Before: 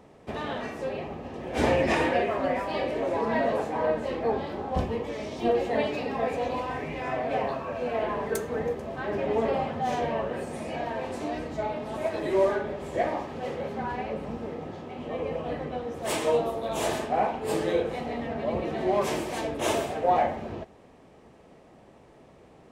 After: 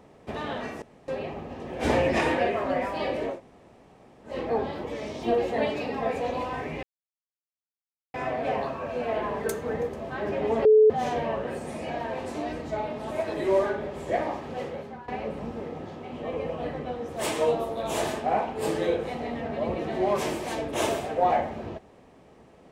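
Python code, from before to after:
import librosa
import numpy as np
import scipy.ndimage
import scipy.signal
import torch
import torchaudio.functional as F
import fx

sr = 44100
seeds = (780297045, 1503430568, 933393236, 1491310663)

y = fx.edit(x, sr, fx.insert_room_tone(at_s=0.82, length_s=0.26),
    fx.room_tone_fill(start_s=3.07, length_s=0.98, crossfade_s=0.16),
    fx.cut(start_s=4.58, length_s=0.43),
    fx.insert_silence(at_s=7.0, length_s=1.31),
    fx.bleep(start_s=9.51, length_s=0.25, hz=432.0, db=-12.5),
    fx.fade_out_to(start_s=13.46, length_s=0.48, floor_db=-17.0), tone=tone)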